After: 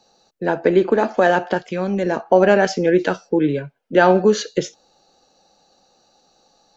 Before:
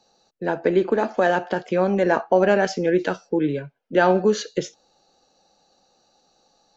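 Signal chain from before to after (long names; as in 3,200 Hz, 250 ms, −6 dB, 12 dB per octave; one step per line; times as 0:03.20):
0:01.57–0:02.25: parametric band 420 Hz → 1,500 Hz −9 dB 2.9 octaves
level +4 dB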